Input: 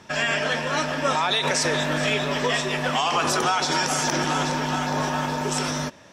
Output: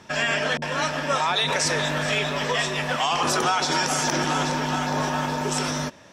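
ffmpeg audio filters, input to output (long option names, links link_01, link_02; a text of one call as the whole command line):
ffmpeg -i in.wav -filter_complex "[0:a]asettb=1/sr,asplit=3[link_01][link_02][link_03];[link_01]atrim=end=0.574[link_04];[link_02]atrim=start=0.57:end=3.23,asetpts=PTS-STARTPTS,afade=type=in:duration=0.004:curve=qsin,afade=type=out:start_time=2.656:duration=0.004:curve=qsin,acrossover=split=350[link_05][link_06];[link_06]adelay=50[link_07];[link_05][link_07]amix=inputs=2:normalize=0,atrim=end_sample=117306[link_08];[link_03]atrim=start=3.226[link_09];[link_04][link_08]acrossfade=duration=0.004:curve1=hsin:curve2=qsin[link_10];[link_10][link_09]acrossfade=duration=0.004:curve1=qsin:curve2=hsin" out.wav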